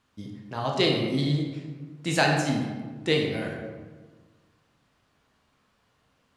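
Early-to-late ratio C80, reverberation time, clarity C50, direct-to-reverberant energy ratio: 5.0 dB, 1.4 s, 3.0 dB, 0.0 dB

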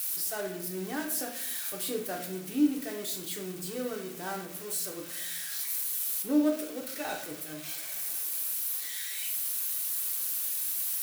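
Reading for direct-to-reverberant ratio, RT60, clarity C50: 1.0 dB, 0.70 s, 7.5 dB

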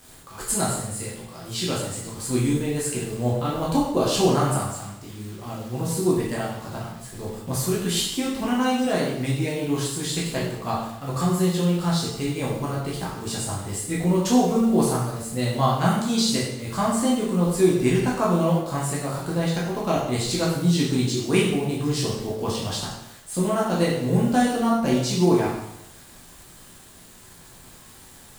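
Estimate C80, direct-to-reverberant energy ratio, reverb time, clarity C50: 5.0 dB, −6.0 dB, 0.80 s, 2.5 dB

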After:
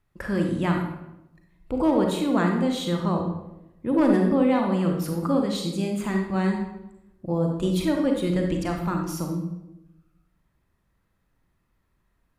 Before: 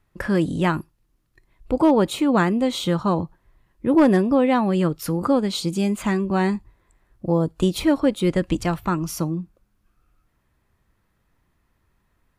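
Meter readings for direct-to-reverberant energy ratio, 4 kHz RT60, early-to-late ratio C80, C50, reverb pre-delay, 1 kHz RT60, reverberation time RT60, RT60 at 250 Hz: 2.0 dB, 0.65 s, 7.0 dB, 3.5 dB, 33 ms, 0.85 s, 0.95 s, 1.1 s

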